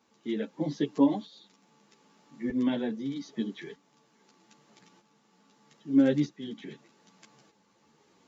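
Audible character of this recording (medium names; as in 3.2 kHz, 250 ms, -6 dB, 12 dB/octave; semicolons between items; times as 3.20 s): tremolo saw up 0.8 Hz, depth 60%; a shimmering, thickened sound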